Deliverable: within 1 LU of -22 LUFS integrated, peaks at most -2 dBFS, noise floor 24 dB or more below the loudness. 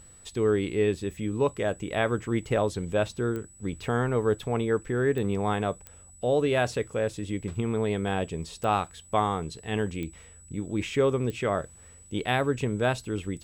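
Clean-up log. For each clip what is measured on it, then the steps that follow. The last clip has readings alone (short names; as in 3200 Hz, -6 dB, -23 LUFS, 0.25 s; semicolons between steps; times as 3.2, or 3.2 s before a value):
clicks 6; steady tone 7900 Hz; tone level -51 dBFS; loudness -28.5 LUFS; peak -11.5 dBFS; loudness target -22.0 LUFS
-> de-click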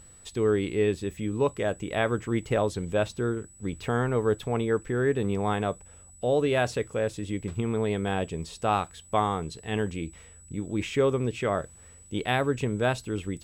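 clicks 0; steady tone 7900 Hz; tone level -51 dBFS
-> notch 7900 Hz, Q 30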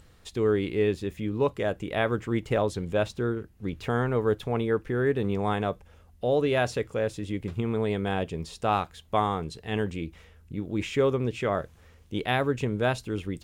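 steady tone none; loudness -28.5 LUFS; peak -11.5 dBFS; loudness target -22.0 LUFS
-> gain +6.5 dB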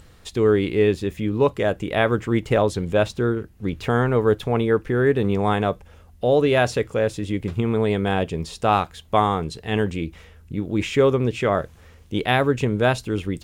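loudness -22.0 LUFS; peak -5.0 dBFS; noise floor -49 dBFS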